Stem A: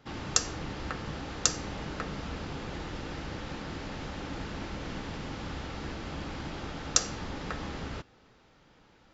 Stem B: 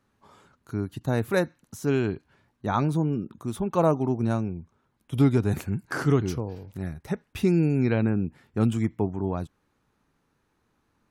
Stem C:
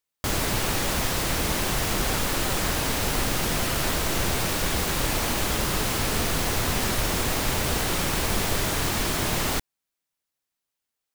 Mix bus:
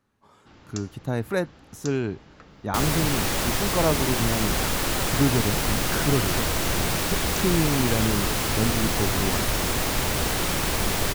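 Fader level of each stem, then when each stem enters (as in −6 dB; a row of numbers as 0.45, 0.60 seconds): −13.0, −1.5, +0.5 decibels; 0.40, 0.00, 2.50 seconds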